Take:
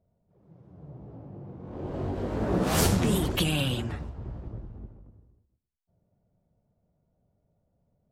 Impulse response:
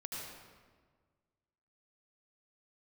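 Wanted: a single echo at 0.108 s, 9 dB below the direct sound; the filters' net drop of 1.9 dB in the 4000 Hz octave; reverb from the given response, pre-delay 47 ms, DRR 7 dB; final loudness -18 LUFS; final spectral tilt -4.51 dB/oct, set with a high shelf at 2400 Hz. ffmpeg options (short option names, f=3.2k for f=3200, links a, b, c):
-filter_complex "[0:a]highshelf=f=2.4k:g=6,equalizer=f=4k:t=o:g=-8.5,aecho=1:1:108:0.355,asplit=2[a][b];[1:a]atrim=start_sample=2205,adelay=47[c];[b][c]afir=irnorm=-1:irlink=0,volume=-7dB[d];[a][d]amix=inputs=2:normalize=0,volume=8.5dB"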